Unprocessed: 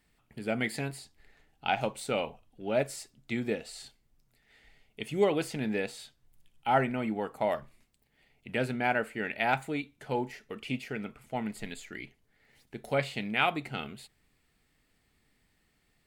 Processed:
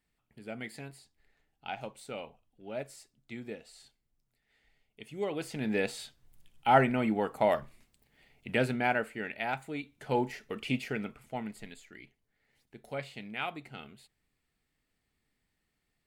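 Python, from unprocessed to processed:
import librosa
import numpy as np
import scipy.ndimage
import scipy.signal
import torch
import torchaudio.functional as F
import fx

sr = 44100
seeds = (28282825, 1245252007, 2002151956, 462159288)

y = fx.gain(x, sr, db=fx.line((5.17, -10.0), (5.85, 3.0), (8.52, 3.0), (9.6, -7.0), (10.17, 2.5), (10.89, 2.5), (11.84, -9.0)))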